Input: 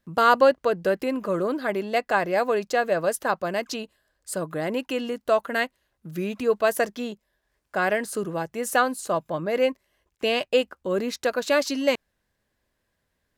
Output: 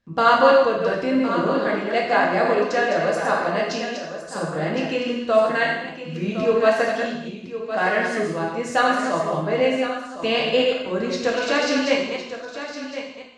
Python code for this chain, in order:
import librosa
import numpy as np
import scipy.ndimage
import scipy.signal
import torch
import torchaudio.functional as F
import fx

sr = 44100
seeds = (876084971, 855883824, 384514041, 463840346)

y = fx.reverse_delay(x, sr, ms=128, wet_db=-4.5)
y = scipy.signal.sosfilt(scipy.signal.butter(4, 6500.0, 'lowpass', fs=sr, output='sos'), y)
y = fx.peak_eq(y, sr, hz=510.0, db=-2.5, octaves=0.77)
y = y + 10.0 ** (-11.0 / 20.0) * np.pad(y, (int(1060 * sr / 1000.0), 0))[:len(y)]
y = fx.rev_gated(y, sr, seeds[0], gate_ms=270, shape='falling', drr_db=-2.5)
y = F.gain(torch.from_numpy(y), -1.0).numpy()